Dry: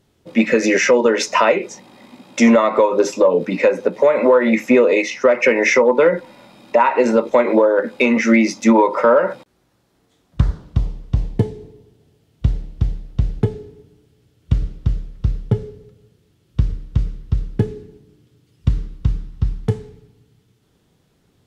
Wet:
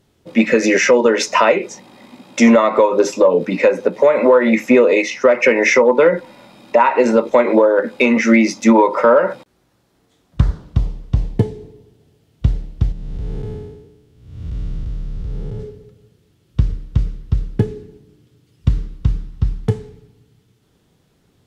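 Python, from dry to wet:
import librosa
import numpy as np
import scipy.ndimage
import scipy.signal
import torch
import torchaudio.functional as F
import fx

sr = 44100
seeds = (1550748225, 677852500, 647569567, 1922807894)

y = fx.spec_blur(x, sr, span_ms=346.0, at=(12.92, 15.6))
y = F.gain(torch.from_numpy(y), 1.5).numpy()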